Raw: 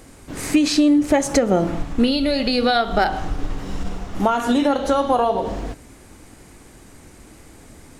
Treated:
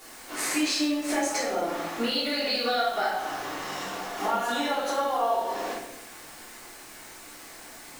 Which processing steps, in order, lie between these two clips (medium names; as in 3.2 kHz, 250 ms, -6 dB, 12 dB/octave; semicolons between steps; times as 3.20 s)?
high-pass 650 Hz 12 dB/octave; compression 5:1, threshold -30 dBFS, peak gain reduction 13.5 dB; word length cut 8-bit, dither none; simulated room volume 240 m³, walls mixed, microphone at 3.3 m; trim -4.5 dB